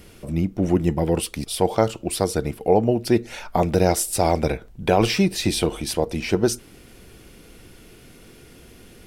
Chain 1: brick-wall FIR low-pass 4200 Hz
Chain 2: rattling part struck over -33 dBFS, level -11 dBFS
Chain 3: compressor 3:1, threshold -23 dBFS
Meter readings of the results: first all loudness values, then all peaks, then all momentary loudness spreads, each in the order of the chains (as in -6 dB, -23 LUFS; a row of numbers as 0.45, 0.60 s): -22.5, -21.0, -27.5 LUFS; -3.5, -3.5, -9.5 dBFS; 6, 5, 21 LU